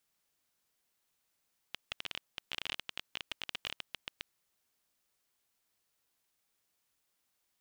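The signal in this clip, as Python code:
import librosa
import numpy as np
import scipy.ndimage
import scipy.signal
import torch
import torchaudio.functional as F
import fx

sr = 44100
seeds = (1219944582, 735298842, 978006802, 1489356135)

y = fx.geiger_clicks(sr, seeds[0], length_s=2.47, per_s=19.0, level_db=-20.0)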